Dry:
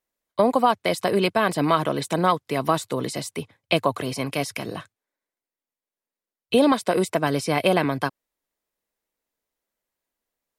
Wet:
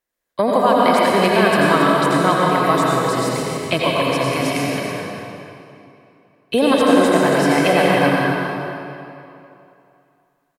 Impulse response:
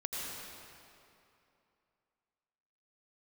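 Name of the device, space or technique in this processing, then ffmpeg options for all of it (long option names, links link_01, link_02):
cave: -filter_complex "[0:a]aecho=1:1:277:0.355[link_01];[1:a]atrim=start_sample=2205[link_02];[link_01][link_02]afir=irnorm=-1:irlink=0,equalizer=frequency=1700:width_type=o:width=0.34:gain=5.5,volume=3dB"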